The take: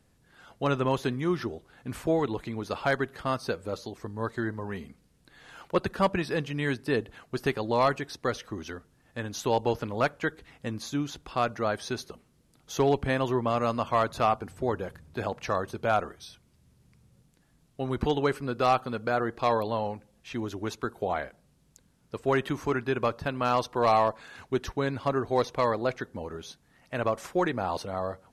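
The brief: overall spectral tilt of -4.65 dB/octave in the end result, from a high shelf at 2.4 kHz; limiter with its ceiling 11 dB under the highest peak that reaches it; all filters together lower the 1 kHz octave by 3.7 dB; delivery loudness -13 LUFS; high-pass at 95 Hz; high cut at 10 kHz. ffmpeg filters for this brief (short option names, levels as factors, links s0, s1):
-af "highpass=95,lowpass=10000,equalizer=f=1000:t=o:g=-6,highshelf=f=2400:g=5.5,volume=13.3,alimiter=limit=1:level=0:latency=1"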